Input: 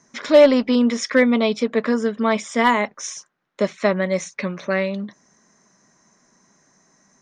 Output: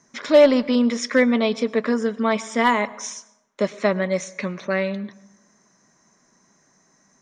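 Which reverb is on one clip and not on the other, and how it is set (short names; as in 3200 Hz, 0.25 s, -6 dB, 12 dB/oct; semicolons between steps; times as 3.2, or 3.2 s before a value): plate-style reverb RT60 0.92 s, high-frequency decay 0.55×, pre-delay 90 ms, DRR 19 dB; gain -1.5 dB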